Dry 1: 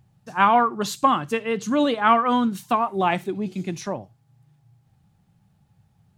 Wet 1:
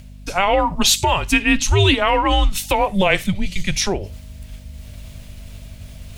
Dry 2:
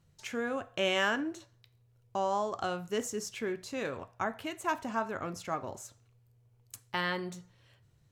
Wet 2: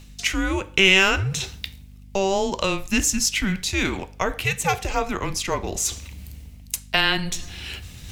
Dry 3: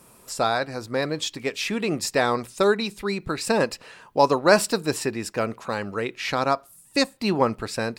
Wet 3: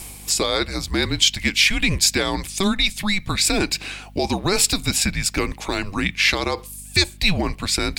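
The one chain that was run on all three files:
frequency shift -190 Hz; in parallel at -1.5 dB: compressor, threshold -30 dBFS; on the sum: limiter -12 dBFS; reverse; upward compressor, threshold -31 dBFS; reverse; hum 50 Hz, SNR 19 dB; resonant high shelf 1800 Hz +7.5 dB, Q 1.5; normalise peaks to -2 dBFS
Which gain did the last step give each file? +5.0, +6.0, +1.0 dB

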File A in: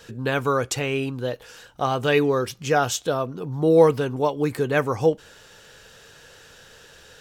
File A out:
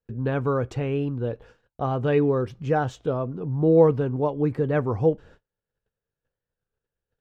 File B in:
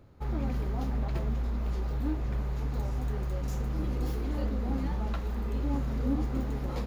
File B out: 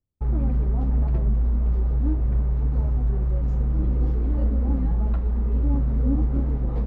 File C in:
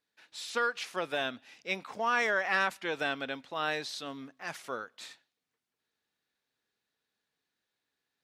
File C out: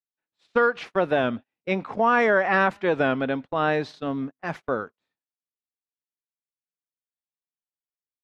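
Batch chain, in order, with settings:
LPF 1700 Hz 6 dB/oct; gate -46 dBFS, range -37 dB; tilt -2.5 dB/oct; record warp 33 1/3 rpm, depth 100 cents; match loudness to -24 LUFS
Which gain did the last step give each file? -4.0, 0.0, +10.5 dB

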